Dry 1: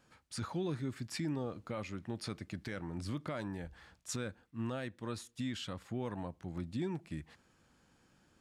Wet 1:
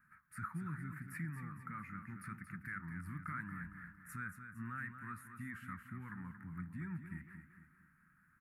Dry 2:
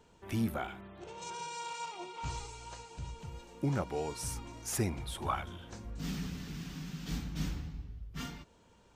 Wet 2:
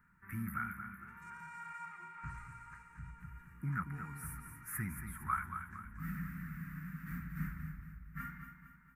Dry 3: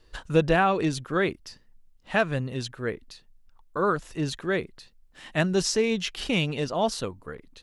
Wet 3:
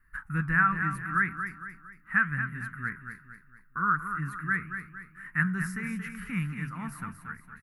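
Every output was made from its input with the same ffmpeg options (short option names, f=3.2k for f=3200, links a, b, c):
-filter_complex "[0:a]firequalizer=gain_entry='entry(110,0);entry(170,6);entry(410,-21);entry(620,-28);entry(940,-5);entry(1300,12);entry(1900,11);entry(3200,-24);entry(6400,-19);entry(11000,8)':delay=0.05:min_phase=1,flanger=delay=4.9:depth=7.7:regen=-80:speed=0.8:shape=sinusoidal,asplit=2[a][b];[b]aecho=0:1:229|458|687|916|1145:0.376|0.162|0.0695|0.0299|0.0128[c];[a][c]amix=inputs=2:normalize=0,volume=-3dB"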